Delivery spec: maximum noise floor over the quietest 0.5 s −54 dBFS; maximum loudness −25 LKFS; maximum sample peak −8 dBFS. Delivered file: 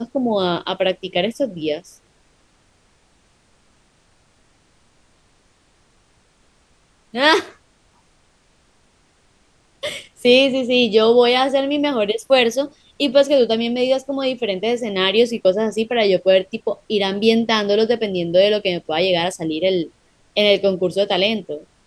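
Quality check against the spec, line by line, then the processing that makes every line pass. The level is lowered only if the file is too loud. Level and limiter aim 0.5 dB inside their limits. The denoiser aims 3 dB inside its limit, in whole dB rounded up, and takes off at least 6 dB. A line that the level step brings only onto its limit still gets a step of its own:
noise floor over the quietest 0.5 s −58 dBFS: in spec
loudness −18.0 LKFS: out of spec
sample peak −2.0 dBFS: out of spec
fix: level −7.5 dB

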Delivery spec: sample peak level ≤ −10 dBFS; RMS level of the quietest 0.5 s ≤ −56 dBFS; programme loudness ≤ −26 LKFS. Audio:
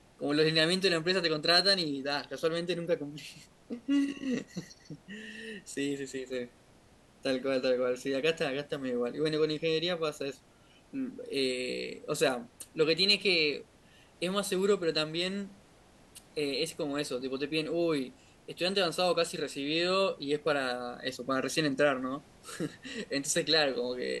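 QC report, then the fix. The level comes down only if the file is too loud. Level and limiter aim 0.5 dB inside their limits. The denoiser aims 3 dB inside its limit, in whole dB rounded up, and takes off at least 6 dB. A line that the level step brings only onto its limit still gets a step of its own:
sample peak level −12.0 dBFS: in spec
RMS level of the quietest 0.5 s −60 dBFS: in spec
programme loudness −30.5 LKFS: in spec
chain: no processing needed

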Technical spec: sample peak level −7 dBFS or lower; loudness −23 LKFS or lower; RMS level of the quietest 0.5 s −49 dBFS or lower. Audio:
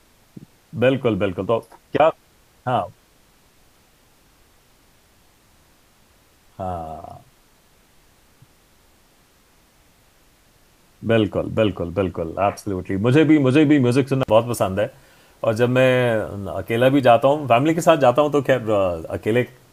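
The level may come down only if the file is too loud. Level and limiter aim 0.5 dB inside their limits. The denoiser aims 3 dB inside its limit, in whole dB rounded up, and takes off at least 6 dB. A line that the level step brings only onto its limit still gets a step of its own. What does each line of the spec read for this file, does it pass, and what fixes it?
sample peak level −2.0 dBFS: out of spec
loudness −19.0 LKFS: out of spec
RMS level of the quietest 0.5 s −56 dBFS: in spec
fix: level −4.5 dB
brickwall limiter −7.5 dBFS

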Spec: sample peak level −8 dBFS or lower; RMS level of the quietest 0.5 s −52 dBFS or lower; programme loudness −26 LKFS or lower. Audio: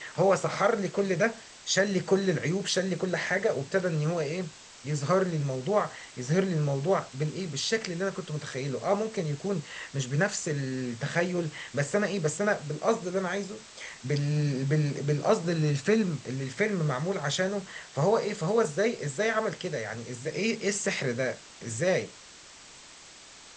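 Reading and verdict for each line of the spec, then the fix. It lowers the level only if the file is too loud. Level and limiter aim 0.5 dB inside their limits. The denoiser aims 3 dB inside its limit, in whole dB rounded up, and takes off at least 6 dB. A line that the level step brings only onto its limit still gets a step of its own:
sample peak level −11.5 dBFS: in spec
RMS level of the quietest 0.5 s −50 dBFS: out of spec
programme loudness −29.0 LKFS: in spec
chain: broadband denoise 6 dB, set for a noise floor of −50 dBFS

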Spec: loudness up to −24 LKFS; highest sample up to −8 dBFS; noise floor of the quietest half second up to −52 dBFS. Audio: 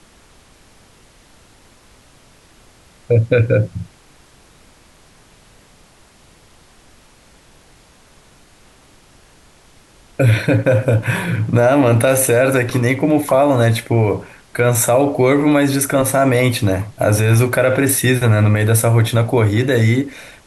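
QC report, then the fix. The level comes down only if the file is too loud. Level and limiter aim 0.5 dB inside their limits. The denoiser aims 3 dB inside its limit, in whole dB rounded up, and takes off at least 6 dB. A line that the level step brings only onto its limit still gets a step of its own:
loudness −15.0 LKFS: out of spec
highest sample −4.5 dBFS: out of spec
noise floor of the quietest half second −48 dBFS: out of spec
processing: level −9.5 dB

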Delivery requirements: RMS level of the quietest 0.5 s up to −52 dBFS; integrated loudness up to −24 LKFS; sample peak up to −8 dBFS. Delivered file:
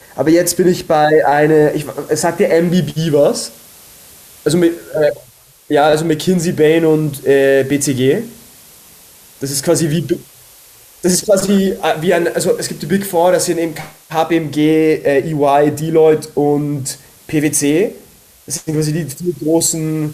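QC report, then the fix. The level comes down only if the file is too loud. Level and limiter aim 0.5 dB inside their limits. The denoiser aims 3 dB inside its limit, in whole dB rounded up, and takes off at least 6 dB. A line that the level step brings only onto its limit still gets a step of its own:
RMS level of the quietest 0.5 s −45 dBFS: out of spec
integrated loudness −14.5 LKFS: out of spec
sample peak −2.0 dBFS: out of spec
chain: level −10 dB

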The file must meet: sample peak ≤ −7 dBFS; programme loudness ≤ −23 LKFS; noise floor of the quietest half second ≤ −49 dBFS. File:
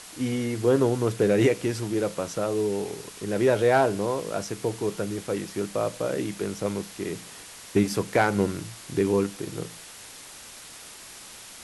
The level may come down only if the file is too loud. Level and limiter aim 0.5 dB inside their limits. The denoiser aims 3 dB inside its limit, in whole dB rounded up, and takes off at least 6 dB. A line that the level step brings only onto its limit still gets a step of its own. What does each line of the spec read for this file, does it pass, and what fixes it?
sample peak −8.5 dBFS: in spec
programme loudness −26.5 LKFS: in spec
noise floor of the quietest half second −44 dBFS: out of spec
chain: broadband denoise 8 dB, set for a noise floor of −44 dBFS

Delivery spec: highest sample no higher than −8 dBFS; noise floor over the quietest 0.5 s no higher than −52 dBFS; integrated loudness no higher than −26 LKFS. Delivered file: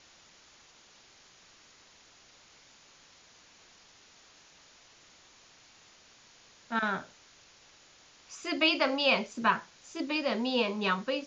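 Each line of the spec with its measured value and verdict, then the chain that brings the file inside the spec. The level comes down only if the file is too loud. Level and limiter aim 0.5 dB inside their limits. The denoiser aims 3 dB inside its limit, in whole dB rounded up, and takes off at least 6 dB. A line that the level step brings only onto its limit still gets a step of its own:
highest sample −13.0 dBFS: in spec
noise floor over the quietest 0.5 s −59 dBFS: in spec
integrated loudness −29.5 LKFS: in spec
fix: no processing needed

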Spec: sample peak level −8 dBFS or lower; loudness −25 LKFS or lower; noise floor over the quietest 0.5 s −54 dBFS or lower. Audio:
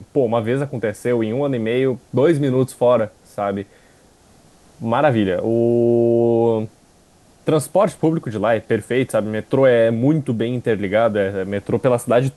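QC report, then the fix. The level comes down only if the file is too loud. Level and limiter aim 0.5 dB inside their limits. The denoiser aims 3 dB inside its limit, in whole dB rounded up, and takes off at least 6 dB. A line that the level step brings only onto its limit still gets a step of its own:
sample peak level −5.0 dBFS: out of spec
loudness −18.5 LKFS: out of spec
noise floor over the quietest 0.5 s −52 dBFS: out of spec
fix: level −7 dB

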